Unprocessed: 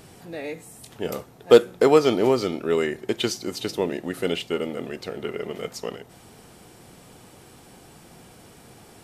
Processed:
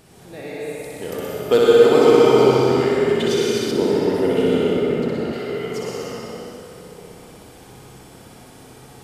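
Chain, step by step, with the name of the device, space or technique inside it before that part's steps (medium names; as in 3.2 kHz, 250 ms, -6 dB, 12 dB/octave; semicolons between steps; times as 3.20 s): tunnel (flutter echo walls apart 10.6 m, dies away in 1.2 s; reverberation RT60 3.2 s, pre-delay 92 ms, DRR -4.5 dB); 3.71–5.33 s: tilt shelf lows +5 dB, about 1.2 kHz; trim -3.5 dB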